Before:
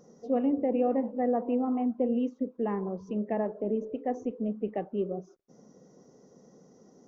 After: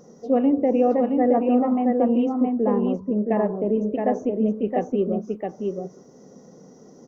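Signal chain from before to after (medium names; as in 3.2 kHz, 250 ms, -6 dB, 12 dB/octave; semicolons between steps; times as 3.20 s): 2.32–3.29 s: low-pass 1.4 kHz -> 1 kHz 12 dB/octave; delay 669 ms -4 dB; trim +7.5 dB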